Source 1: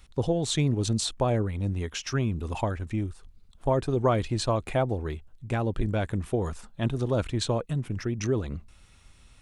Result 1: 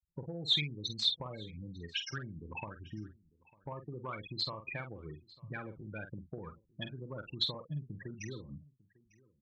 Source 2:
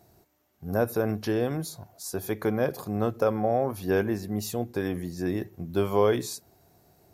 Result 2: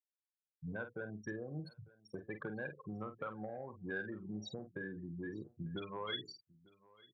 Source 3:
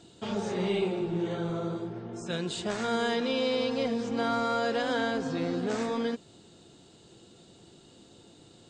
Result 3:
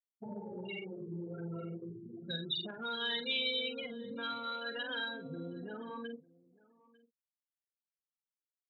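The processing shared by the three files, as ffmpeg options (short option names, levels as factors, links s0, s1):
-filter_complex "[0:a]afftfilt=real='re*gte(hypot(re,im),0.0501)':imag='im*gte(hypot(re,im),0.0501)':win_size=1024:overlap=0.75,tiltshelf=f=970:g=-3.5,acrossover=split=1700[s0][s1];[s0]acompressor=threshold=0.0158:ratio=12[s2];[s2][s1]amix=inputs=2:normalize=0,asoftclip=type=tanh:threshold=0.0631,highpass=120,equalizer=f=150:t=q:w=4:g=5,equalizer=f=250:t=q:w=4:g=-4,equalizer=f=410:t=q:w=4:g=-4,equalizer=f=710:t=q:w=4:g=-9,equalizer=f=2300:t=q:w=4:g=4,equalizer=f=3500:t=q:w=4:g=9,lowpass=f=4700:w=0.5412,lowpass=f=4700:w=1.3066,asplit=2[s3][s4];[s4]adelay=47,volume=0.355[s5];[s3][s5]amix=inputs=2:normalize=0,aecho=1:1:899:0.0668,volume=0.794"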